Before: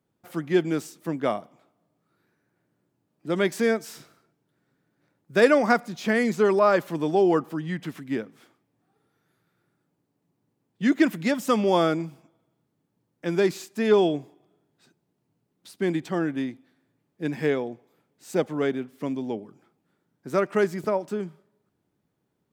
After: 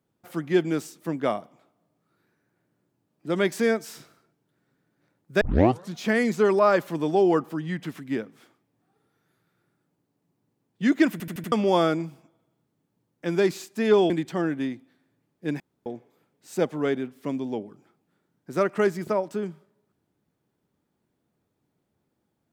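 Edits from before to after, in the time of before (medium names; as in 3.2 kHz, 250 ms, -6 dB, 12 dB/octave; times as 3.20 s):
5.41 s: tape start 0.53 s
11.12 s: stutter in place 0.08 s, 5 plays
14.10–15.87 s: delete
17.37–17.63 s: room tone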